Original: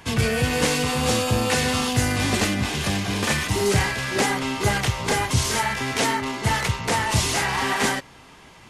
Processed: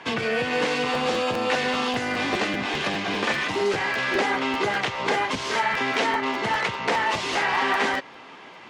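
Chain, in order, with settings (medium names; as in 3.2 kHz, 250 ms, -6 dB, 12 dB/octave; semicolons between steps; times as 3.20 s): compression 4:1, threshold -24 dBFS, peak gain reduction 8.5 dB; band-pass 300–3400 Hz; crackling interface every 0.20 s, samples 512, repeat, from 0.93 s; trim +5.5 dB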